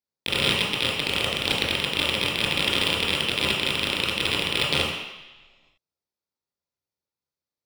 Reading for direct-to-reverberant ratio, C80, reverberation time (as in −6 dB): −5.5 dB, 5.0 dB, 1.1 s